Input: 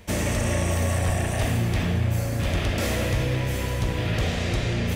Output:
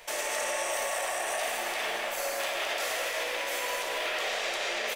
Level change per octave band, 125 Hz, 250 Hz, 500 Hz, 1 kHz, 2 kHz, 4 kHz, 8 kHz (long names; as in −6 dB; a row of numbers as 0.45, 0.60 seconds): below −40 dB, −22.0 dB, −3.5 dB, +1.0 dB, +0.5 dB, +0.5 dB, 0.0 dB